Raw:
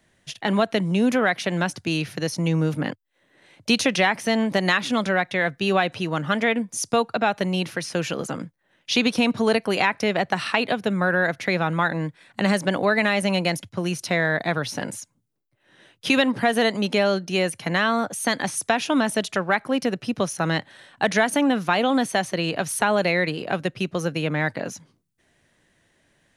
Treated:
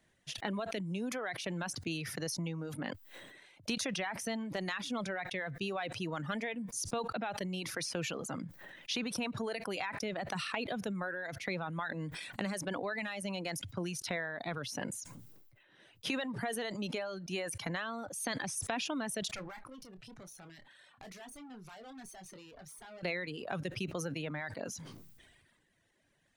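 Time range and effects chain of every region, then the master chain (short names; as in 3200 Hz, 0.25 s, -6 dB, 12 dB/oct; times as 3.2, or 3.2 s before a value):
19.35–23.03 tube stage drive 28 dB, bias 0.7 + compressor 10:1, threshold -40 dBFS + doubler 27 ms -8 dB
whole clip: compressor 5:1, threshold -26 dBFS; reverb removal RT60 1.3 s; sustainer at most 35 dB/s; gain -8 dB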